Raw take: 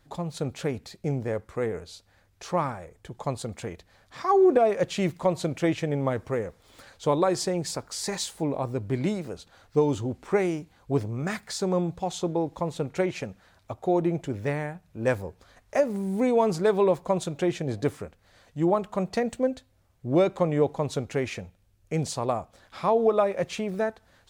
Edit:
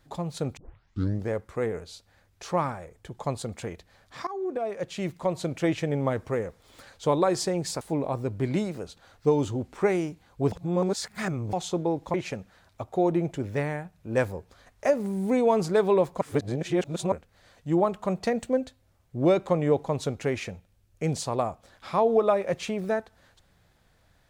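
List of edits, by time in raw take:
0.57 tape start 0.73 s
4.27–5.8 fade in linear, from -17.5 dB
7.81–8.31 cut
11.02–12.03 reverse
12.64–13.04 cut
17.11–18.02 reverse

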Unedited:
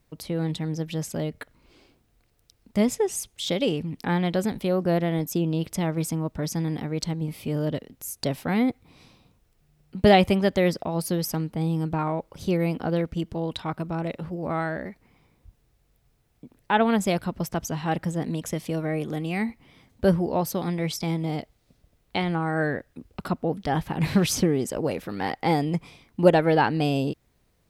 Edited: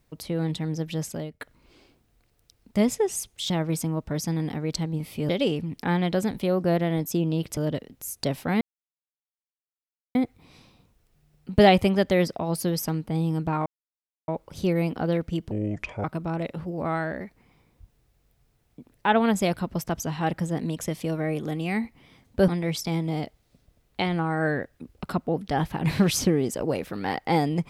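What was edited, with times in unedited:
1.05–1.4 fade out, to -17.5 dB
5.78–7.57 move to 3.5
8.61 insert silence 1.54 s
12.12 insert silence 0.62 s
13.35–13.69 speed 64%
20.13–20.64 cut

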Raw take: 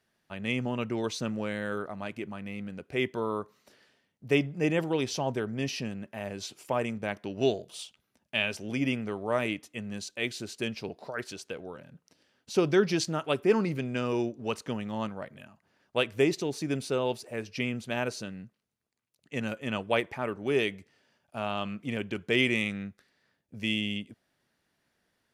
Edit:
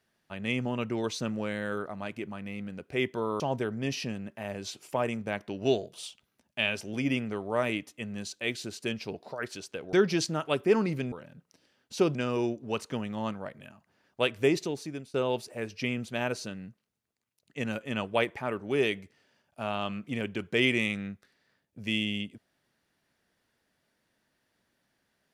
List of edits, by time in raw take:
3.4–5.16 cut
11.69–12.72 move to 13.91
16.37–16.9 fade out, to -21.5 dB

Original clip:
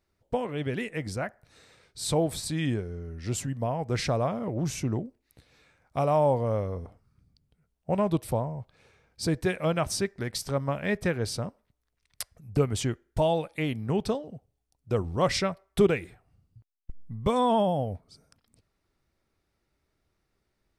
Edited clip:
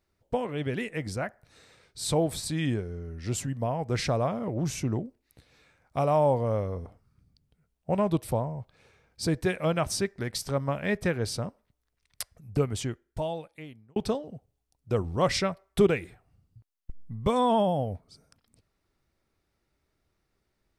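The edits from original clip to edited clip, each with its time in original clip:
12.33–13.96 fade out

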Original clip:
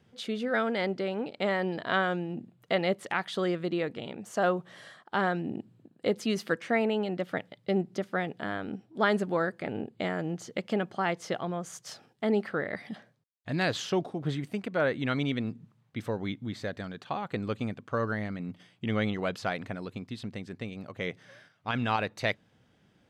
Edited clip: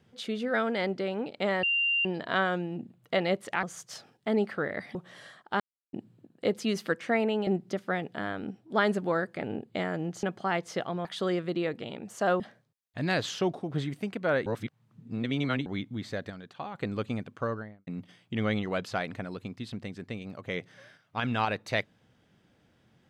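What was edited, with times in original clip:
1.63 add tone 2780 Hz -23.5 dBFS 0.42 s
3.21–4.56 swap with 11.59–12.91
5.21–5.54 mute
7.08–7.72 cut
10.48–10.77 cut
14.97–16.17 reverse
16.81–17.26 gain -5 dB
17.84–18.38 studio fade out

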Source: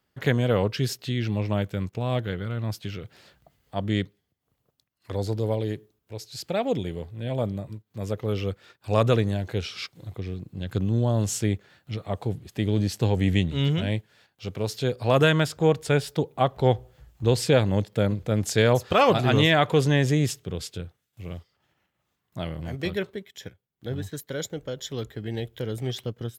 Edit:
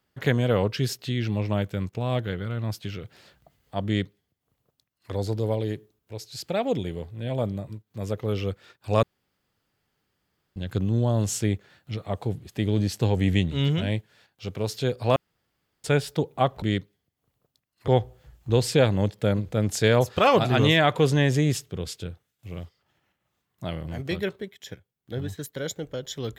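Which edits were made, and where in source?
3.86–5.12 copy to 16.62
9.03–10.56 room tone
15.16–15.84 room tone

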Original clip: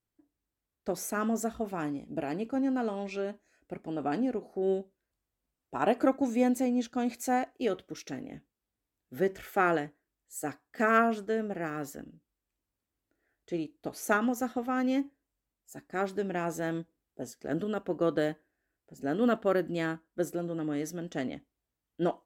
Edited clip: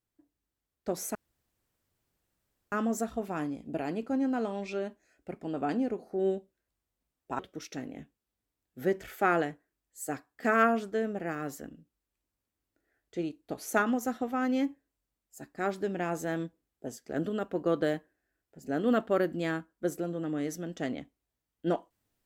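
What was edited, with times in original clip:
1.15 insert room tone 1.57 s
5.82–7.74 cut

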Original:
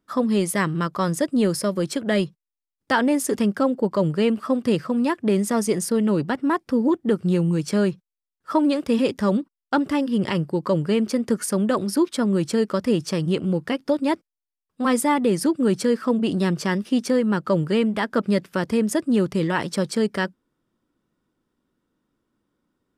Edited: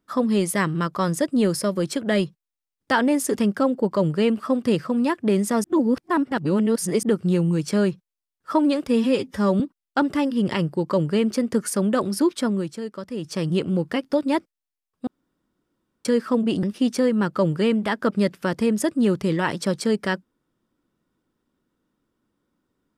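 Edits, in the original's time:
5.64–7.03 reverse
8.88–9.36 stretch 1.5×
12.18–13.23 dip -10.5 dB, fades 0.31 s linear
14.83–15.81 room tone
16.39–16.74 cut

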